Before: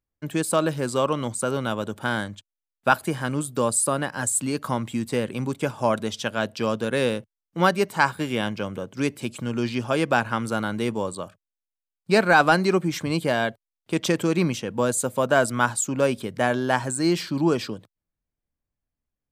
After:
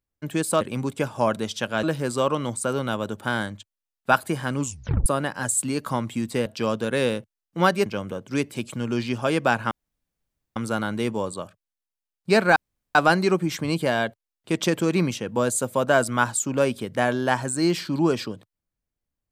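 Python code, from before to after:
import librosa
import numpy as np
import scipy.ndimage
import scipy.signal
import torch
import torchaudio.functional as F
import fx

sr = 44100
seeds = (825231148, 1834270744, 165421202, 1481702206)

y = fx.edit(x, sr, fx.tape_stop(start_s=3.37, length_s=0.47),
    fx.move(start_s=5.24, length_s=1.22, to_s=0.61),
    fx.cut(start_s=7.86, length_s=0.66),
    fx.insert_room_tone(at_s=10.37, length_s=0.85),
    fx.insert_room_tone(at_s=12.37, length_s=0.39), tone=tone)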